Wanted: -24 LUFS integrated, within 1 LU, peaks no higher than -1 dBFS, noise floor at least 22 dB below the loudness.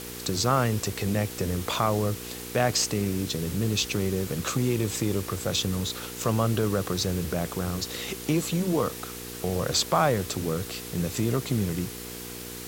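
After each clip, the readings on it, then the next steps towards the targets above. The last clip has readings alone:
hum 60 Hz; highest harmonic 480 Hz; hum level -40 dBFS; noise floor -39 dBFS; noise floor target -50 dBFS; loudness -27.5 LUFS; peak level -10.0 dBFS; loudness target -24.0 LUFS
-> de-hum 60 Hz, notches 8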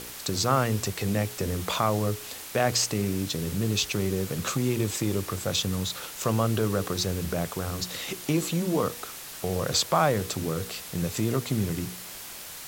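hum not found; noise floor -41 dBFS; noise floor target -50 dBFS
-> noise reduction 9 dB, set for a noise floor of -41 dBFS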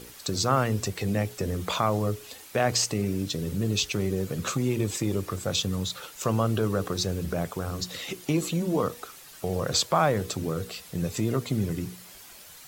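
noise floor -48 dBFS; noise floor target -50 dBFS
-> noise reduction 6 dB, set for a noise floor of -48 dBFS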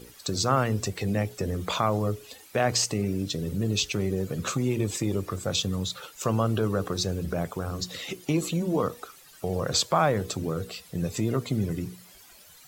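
noise floor -52 dBFS; loudness -28.0 LUFS; peak level -10.5 dBFS; loudness target -24.0 LUFS
-> trim +4 dB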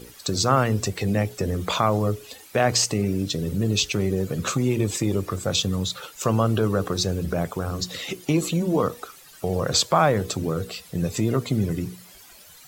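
loudness -24.0 LUFS; peak level -6.5 dBFS; noise floor -48 dBFS

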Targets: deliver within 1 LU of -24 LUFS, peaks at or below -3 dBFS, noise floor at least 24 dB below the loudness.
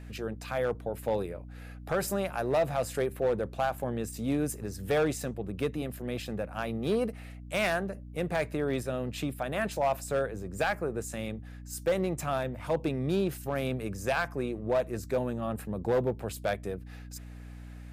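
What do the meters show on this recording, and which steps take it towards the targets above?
clipped samples 0.8%; clipping level -21.0 dBFS; hum 60 Hz; highest harmonic 300 Hz; hum level -42 dBFS; loudness -32.0 LUFS; peak level -21.0 dBFS; loudness target -24.0 LUFS
-> clip repair -21 dBFS; hum notches 60/120/180/240/300 Hz; trim +8 dB

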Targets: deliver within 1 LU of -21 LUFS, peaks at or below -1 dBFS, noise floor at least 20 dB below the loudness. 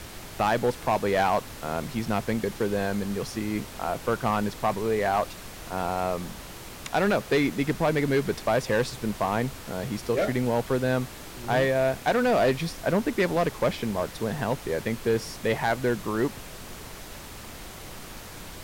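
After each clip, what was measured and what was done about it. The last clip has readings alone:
clipped samples 1.1%; clipping level -17.0 dBFS; noise floor -42 dBFS; noise floor target -47 dBFS; loudness -27.0 LUFS; peak level -17.0 dBFS; loudness target -21.0 LUFS
-> clip repair -17 dBFS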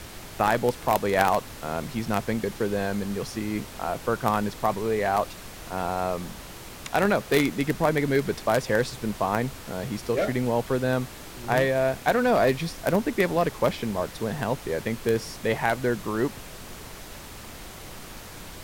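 clipped samples 0.0%; noise floor -42 dBFS; noise floor target -46 dBFS
-> noise print and reduce 6 dB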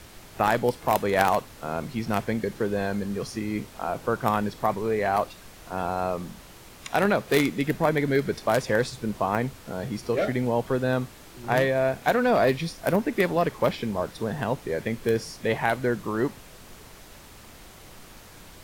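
noise floor -48 dBFS; loudness -26.0 LUFS; peak level -8.0 dBFS; loudness target -21.0 LUFS
-> trim +5 dB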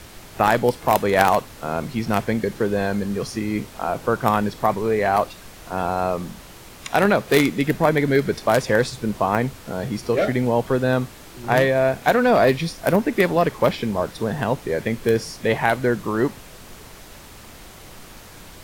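loudness -21.0 LUFS; peak level -3.0 dBFS; noise floor -43 dBFS

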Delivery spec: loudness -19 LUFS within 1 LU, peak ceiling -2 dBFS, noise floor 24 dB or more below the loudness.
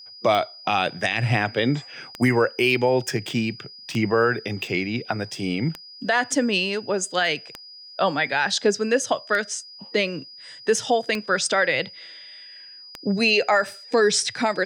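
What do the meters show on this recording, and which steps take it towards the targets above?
clicks found 8; steady tone 4.9 kHz; tone level -41 dBFS; loudness -23.0 LUFS; peak level -9.0 dBFS; loudness target -19.0 LUFS
-> de-click; band-stop 4.9 kHz, Q 30; trim +4 dB

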